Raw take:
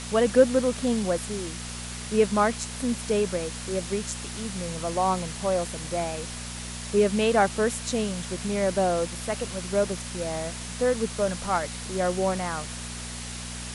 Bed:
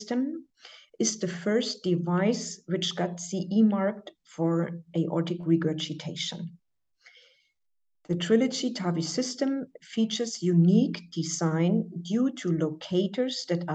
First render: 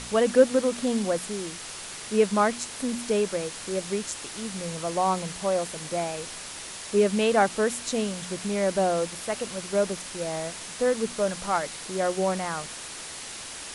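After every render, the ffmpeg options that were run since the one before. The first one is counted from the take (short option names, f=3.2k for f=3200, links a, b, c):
-af "bandreject=f=60:t=h:w=4,bandreject=f=120:t=h:w=4,bandreject=f=180:t=h:w=4,bandreject=f=240:t=h:w=4"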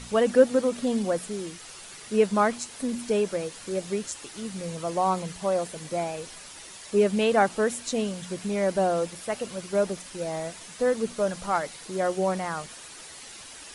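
-af "afftdn=nr=8:nf=-39"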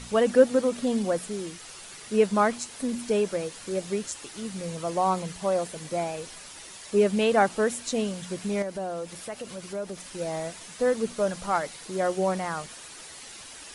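-filter_complex "[0:a]asettb=1/sr,asplit=3[a][b][c];[a]atrim=end=8.624[d];[b]atrim=start=8.62:end=10.13,asetpts=PTS-STARTPTS,afade=t=in:d=0.004:c=qsin,afade=t=out:st=1.506:d=0.004:c=qsin,acompressor=threshold=-36dB:ratio=2:attack=3.2:release=140:knee=1:detection=peak[e];[c]atrim=start=10.126[f];[d][e]acrossfade=d=0.004:c1=hsin:c2=qsin[g];[g][f]acrossfade=d=0.004:c1=qsin:c2=hsin"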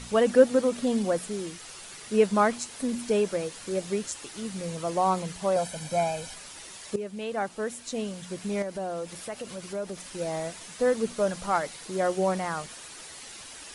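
-filter_complex "[0:a]asettb=1/sr,asplit=3[a][b][c];[a]atrim=end=5.564[d];[b]atrim=start=5.56:end=6.34,asetpts=PTS-STARTPTS,afade=t=in:d=0.004:c=qsin,afade=t=out:st=0.776:d=0.004:c=qsin,aecho=1:1:1.3:0.77,atrim=end_sample=34398[e];[c]atrim=start=6.336[f];[d][e]acrossfade=d=0.004:c1=hsin:c2=qsin[g];[g][f]acrossfade=d=0.004:c1=qsin:c2=hsin,asplit=2[h][i];[h]atrim=end=6.96,asetpts=PTS-STARTPTS,afade=t=out:st=6.956:d=0.004:c=hsin:silence=0.16788[j];[i]atrim=start=6.96,asetpts=PTS-STARTPTS,afade=t=in:d=2.01:silence=0.16788[k];[j][k]concat=n=2:v=0:a=1"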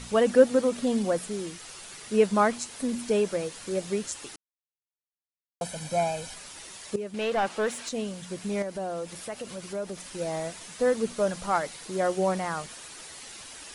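-filter_complex "[0:a]asettb=1/sr,asplit=3[a][b][c];[a]atrim=end=7.144[d];[b]atrim=start=7.14:end=7.89,asetpts=PTS-STARTPTS,afade=t=in:d=0.004:c=qsin,afade=t=out:st=0.746:d=0.004:c=qsin,asplit=2[e][f];[f]highpass=f=720:p=1,volume=18dB,asoftclip=type=tanh:threshold=-18dB[g];[e][g]amix=inputs=2:normalize=0,lowpass=f=3.1k:p=1,volume=-6dB[h];[c]atrim=start=7.886[i];[d][h]acrossfade=d=0.004:c1=hsin:c2=qsin[j];[j][i]acrossfade=d=0.004:c1=qsin:c2=hsin,asplit=3[k][l][m];[k]atrim=end=4.36,asetpts=PTS-STARTPTS,afade=t=out:st=4.356:d=0.004:c=hsin[n];[l]atrim=start=4.36:end=5.61,asetpts=PTS-STARTPTS,volume=0[o];[m]atrim=start=5.61,asetpts=PTS-STARTPTS,afade=t=in:d=0.004:c=hsin[p];[n][o][p]concat=n=3:v=0:a=1"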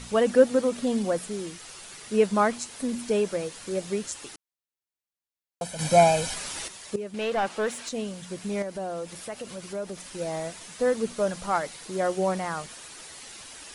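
-filter_complex "[0:a]asplit=3[a][b][c];[a]atrim=end=5.792[d];[b]atrim=start=5.788:end=6.682,asetpts=PTS-STARTPTS,volume=9dB[e];[c]atrim=start=6.678[f];[d][e]acrossfade=d=0.004:c1=hsin:c2=hsin[g];[g][f]acrossfade=d=0.004:c1=hsin:c2=hsin"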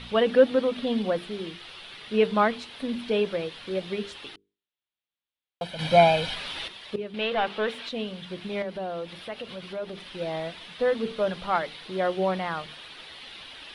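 -af "highshelf=f=5k:t=q:w=3:g=-13.5,bandreject=f=50:t=h:w=6,bandreject=f=100:t=h:w=6,bandreject=f=150:t=h:w=6,bandreject=f=200:t=h:w=6,bandreject=f=250:t=h:w=6,bandreject=f=300:t=h:w=6,bandreject=f=350:t=h:w=6,bandreject=f=400:t=h:w=6,bandreject=f=450:t=h:w=6"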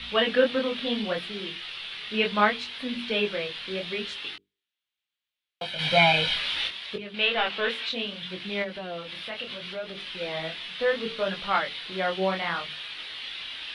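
-filter_complex "[0:a]flanger=delay=20:depth=6.7:speed=0.7,acrossover=split=130|910|3800[a][b][c][d];[c]crystalizer=i=9.5:c=0[e];[a][b][e][d]amix=inputs=4:normalize=0"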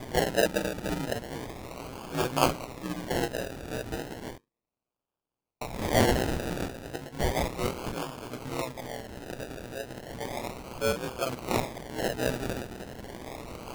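-af "acrusher=samples=32:mix=1:aa=0.000001:lfo=1:lforange=19.2:lforate=0.34,aeval=exprs='val(0)*sin(2*PI*62*n/s)':c=same"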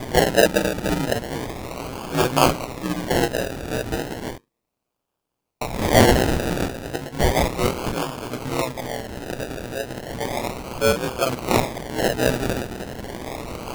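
-af "volume=9dB,alimiter=limit=-2dB:level=0:latency=1"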